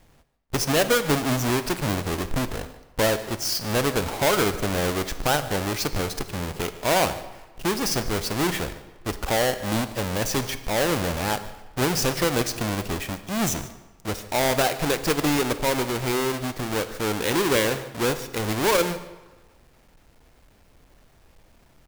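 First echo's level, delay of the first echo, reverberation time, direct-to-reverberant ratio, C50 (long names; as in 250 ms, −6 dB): −19.0 dB, 148 ms, 1.3 s, 11.0 dB, 12.5 dB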